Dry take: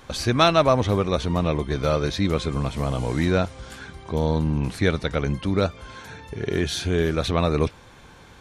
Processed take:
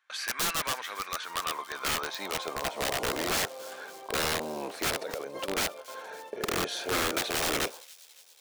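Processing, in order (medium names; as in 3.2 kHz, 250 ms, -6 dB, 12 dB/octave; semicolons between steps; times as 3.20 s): octave divider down 1 oct, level 0 dB; high-pass 290 Hz 6 dB/octave; band-stop 2 kHz, Q 29; gate with hold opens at -33 dBFS; tilt shelf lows +4.5 dB, about 1.5 kHz; 5.01–5.48 s: compressor with a negative ratio -31 dBFS, ratio -1; high-pass sweep 1.7 kHz -> 550 Hz, 0.96–3.02 s; integer overflow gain 19 dB; feedback echo behind a high-pass 280 ms, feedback 62%, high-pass 3.8 kHz, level -17 dB; trim -4 dB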